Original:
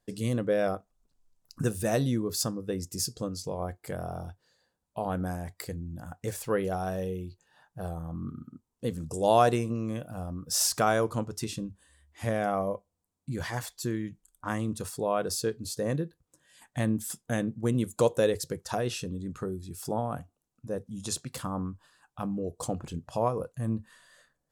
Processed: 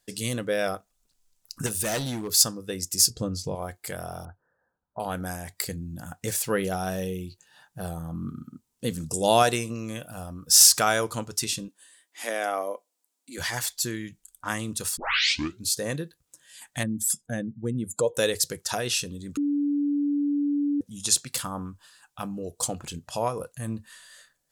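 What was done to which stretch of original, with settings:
1.66–2.38 s: hard clipper -25.5 dBFS
3.10–3.55 s: tilt EQ -3 dB/octave
4.25–5.00 s: steep low-pass 1.6 kHz 72 dB/octave
5.53–9.43 s: peaking EQ 190 Hz +6 dB 1.9 oct
11.68–13.38 s: elliptic high-pass 260 Hz, stop band 80 dB
14.97 s: tape start 0.68 s
16.83–18.17 s: spectral contrast enhancement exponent 1.6
19.37–20.81 s: bleep 288 Hz -20 dBFS
whole clip: tilt shelf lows -7.5 dB, about 1.4 kHz; band-stop 1.1 kHz, Q 18; trim +5 dB

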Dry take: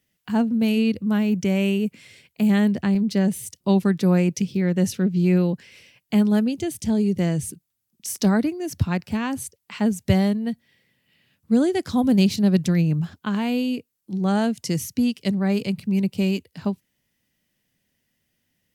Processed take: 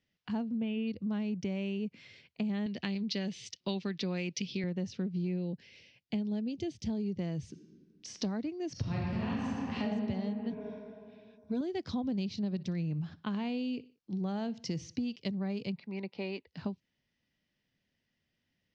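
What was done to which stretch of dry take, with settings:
0.58–0.88 s: time-frequency box 3.7–9.6 kHz -21 dB
2.66–4.64 s: frequency weighting D
5.27–6.88 s: peaking EQ 1.2 kHz -13 dB
7.49–8.09 s: reverb throw, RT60 2.1 s, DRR 4 dB
8.72–9.90 s: reverb throw, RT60 2.2 s, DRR -8 dB
10.50–11.61 s: rippled EQ curve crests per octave 1.6, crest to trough 14 dB
12.45–15.16 s: feedback delay 60 ms, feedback 42%, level -21.5 dB
15.76–16.47 s: cabinet simulation 400–4300 Hz, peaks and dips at 880 Hz +8 dB, 2 kHz +5 dB, 3 kHz -7 dB
whole clip: steep low-pass 5.6 kHz 36 dB/octave; dynamic bell 1.5 kHz, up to -5 dB, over -47 dBFS, Q 1.9; compression, threshold -25 dBFS; trim -6.5 dB

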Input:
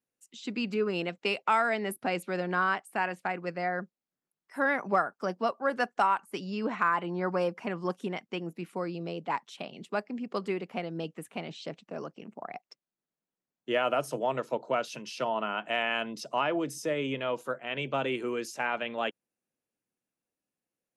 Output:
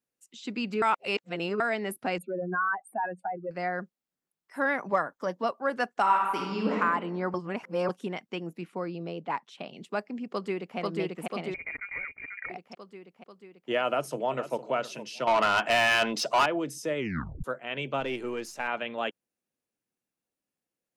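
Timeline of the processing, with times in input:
0.82–1.60 s: reverse
2.18–3.51 s: spectral contrast enhancement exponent 3.1
4.88–5.44 s: rippled EQ curve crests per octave 1.1, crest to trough 7 dB
6.01–6.76 s: reverb throw, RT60 1.3 s, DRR -1.5 dB
7.34–7.89 s: reverse
8.64–9.66 s: treble shelf 6.1 kHz -11 dB
10.31–10.78 s: echo throw 490 ms, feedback 65%, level 0 dB
11.54–12.50 s: frequency inversion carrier 2.6 kHz
13.85–14.57 s: echo throw 460 ms, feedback 15%, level -13 dB
15.27–16.46 s: overdrive pedal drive 22 dB, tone 4.8 kHz, clips at -14.5 dBFS
16.98 s: tape stop 0.46 s
18.00–18.68 s: partial rectifier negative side -3 dB

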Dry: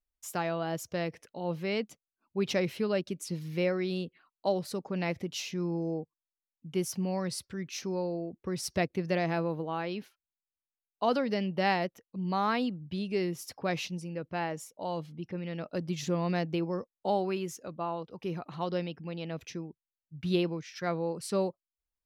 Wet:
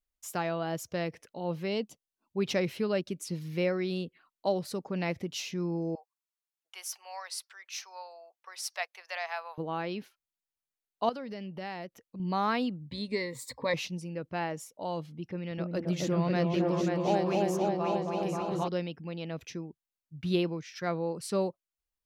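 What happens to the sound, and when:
1.68–2.39 s: time-frequency box 1.1–2.6 kHz -7 dB
5.95–9.58 s: steep high-pass 730 Hz
11.09–12.20 s: compression 2.5:1, threshold -41 dBFS
12.91–13.74 s: rippled EQ curve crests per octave 1, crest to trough 17 dB
15.24–18.68 s: delay with an opening low-pass 268 ms, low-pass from 750 Hz, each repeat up 2 oct, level 0 dB

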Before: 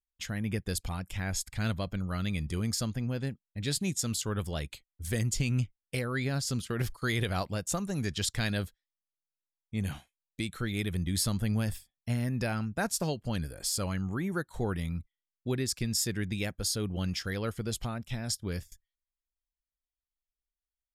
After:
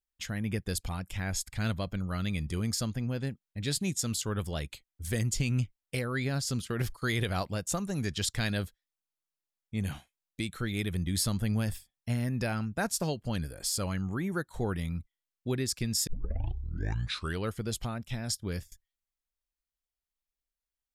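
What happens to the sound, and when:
16.07 s: tape start 1.44 s

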